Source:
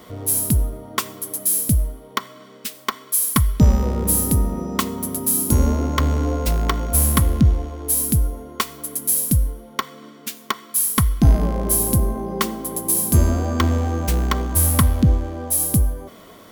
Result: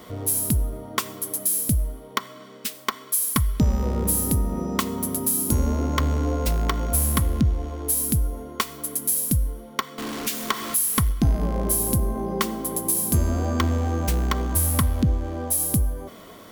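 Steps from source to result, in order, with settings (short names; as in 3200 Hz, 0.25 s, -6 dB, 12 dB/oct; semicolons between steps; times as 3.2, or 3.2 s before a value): 9.98–11.12 zero-crossing step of -27 dBFS; compressor 2:1, threshold -21 dBFS, peak gain reduction 7.5 dB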